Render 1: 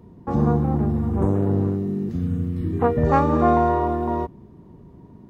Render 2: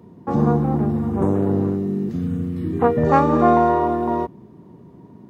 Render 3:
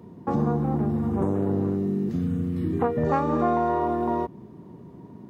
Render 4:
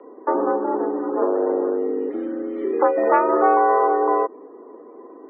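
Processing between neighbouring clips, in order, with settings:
high-pass 130 Hz 12 dB/octave; trim +3 dB
compression 2.5:1, threshold -23 dBFS, peak gain reduction 9.5 dB
loudest bins only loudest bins 64; mistuned SSB +67 Hz 280–2900 Hz; trim +7.5 dB

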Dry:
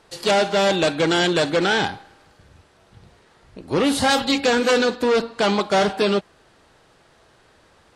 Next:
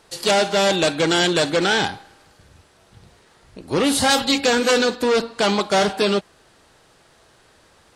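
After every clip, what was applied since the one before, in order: treble shelf 5.1 kHz +8 dB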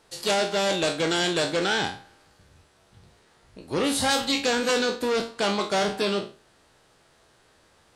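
spectral sustain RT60 0.35 s; trim -7 dB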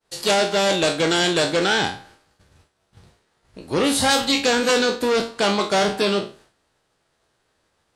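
expander -50 dBFS; trim +5 dB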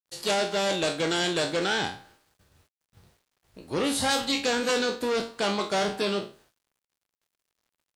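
bit crusher 10-bit; trim -7 dB

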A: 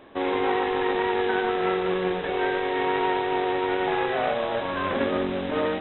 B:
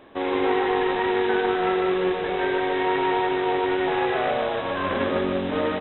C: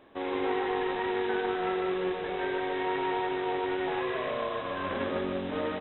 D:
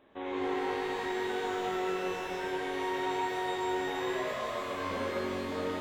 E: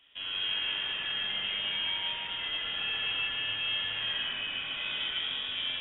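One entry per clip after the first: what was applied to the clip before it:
delay 151 ms -4.5 dB
spectral replace 4.04–4.74 s, 730–1500 Hz after; trim -7.5 dB
pitch-shifted reverb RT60 2.3 s, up +12 st, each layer -8 dB, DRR -0.5 dB; trim -6.5 dB
frequency inversion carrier 3.6 kHz

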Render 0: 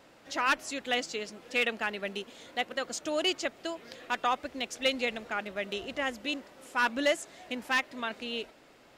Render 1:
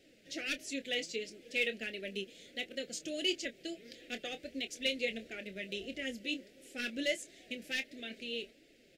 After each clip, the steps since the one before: Chebyshev band-stop 480–2200 Hz, order 2; flange 1.5 Hz, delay 2.5 ms, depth 4.1 ms, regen +42%; doubling 26 ms -11 dB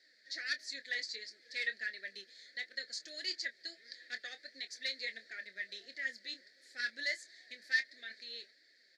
two resonant band-passes 2.8 kHz, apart 1.3 oct; trim +10 dB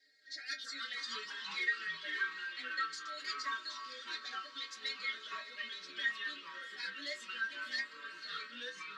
inharmonic resonator 140 Hz, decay 0.27 s, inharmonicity 0.008; echo that smears into a reverb 570 ms, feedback 43%, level -11.5 dB; ever faster or slower copies 215 ms, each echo -3 st, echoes 3; trim +8 dB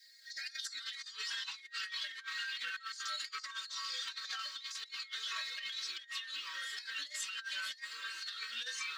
differentiator; compressor with a negative ratio -54 dBFS, ratio -0.5; trim +12 dB

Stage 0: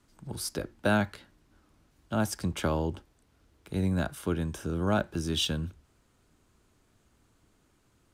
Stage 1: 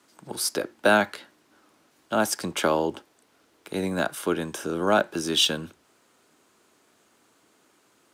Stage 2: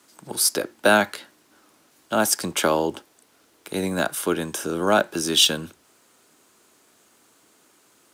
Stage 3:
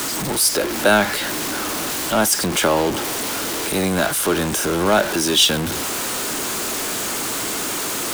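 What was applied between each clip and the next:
high-pass 330 Hz 12 dB/octave; trim +8.5 dB
treble shelf 5.7 kHz +8 dB; trim +2 dB
jump at every zero crossing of -18.5 dBFS

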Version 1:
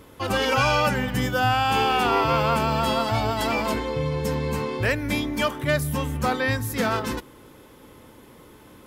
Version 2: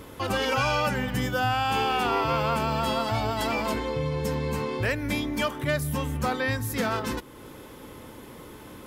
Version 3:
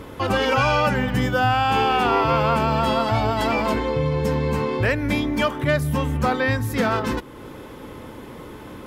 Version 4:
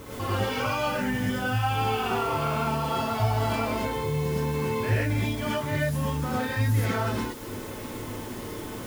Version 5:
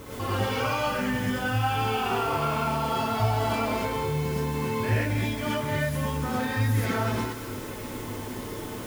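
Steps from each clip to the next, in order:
compression 1.5:1, threshold -42 dBFS, peak gain reduction 9 dB; trim +4.5 dB
treble shelf 4.6 kHz -10 dB; trim +6.5 dB
compression 3:1, threshold -28 dBFS, peak gain reduction 9.5 dB; word length cut 8-bit, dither triangular; gated-style reverb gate 150 ms rising, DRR -7 dB; trim -6.5 dB
two-band feedback delay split 1 kHz, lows 98 ms, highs 211 ms, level -10 dB

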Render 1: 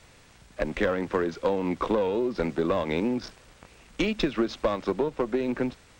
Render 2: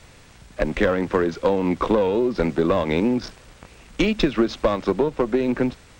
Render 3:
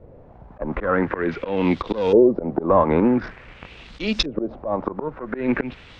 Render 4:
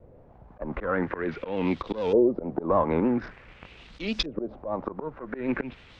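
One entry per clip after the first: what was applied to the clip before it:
bass shelf 220 Hz +3.5 dB; trim +5 dB
LFO low-pass saw up 0.47 Hz 470–5800 Hz; slow attack 169 ms; trim +2.5 dB
vibrato 6.6 Hz 67 cents; trim -6.5 dB

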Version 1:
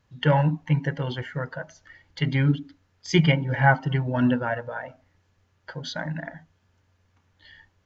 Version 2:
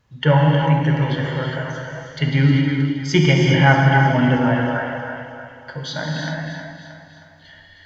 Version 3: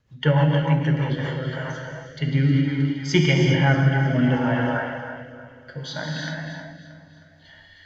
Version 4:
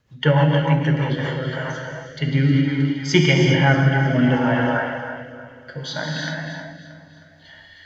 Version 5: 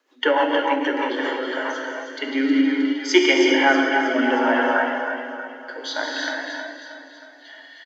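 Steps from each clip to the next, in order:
two-band feedback delay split 560 Hz, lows 231 ms, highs 314 ms, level -10 dB; gated-style reverb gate 440 ms flat, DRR -1 dB; trim +3.5 dB
rotary cabinet horn 6.7 Hz, later 0.65 Hz, at 0.77 s; trim -2 dB
bass shelf 130 Hz -5.5 dB; trim +4 dB
rippled Chebyshev high-pass 260 Hz, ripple 3 dB; on a send: feedback delay 317 ms, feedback 48%, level -11 dB; on the sum: trim +3.5 dB

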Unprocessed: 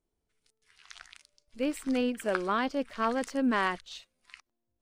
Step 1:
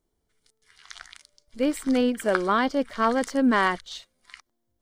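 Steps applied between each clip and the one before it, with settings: band-stop 2.6 kHz, Q 5.8; trim +6.5 dB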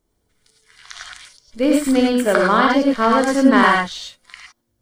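gated-style reverb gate 130 ms rising, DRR -0.5 dB; trim +5.5 dB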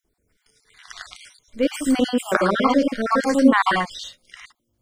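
random holes in the spectrogram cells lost 40%; trim -1 dB

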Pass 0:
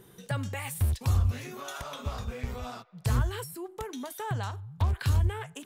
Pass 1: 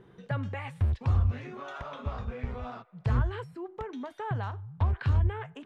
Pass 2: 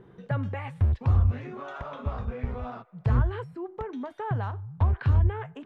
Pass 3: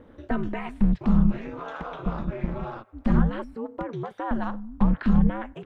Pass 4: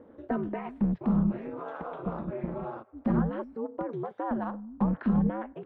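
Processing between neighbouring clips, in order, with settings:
low-pass 2.2 kHz 12 dB/octave
treble shelf 2.4 kHz -9 dB; trim +3.5 dB
ring modulator 110 Hz; trim +5.5 dB
band-pass filter 460 Hz, Q 0.63

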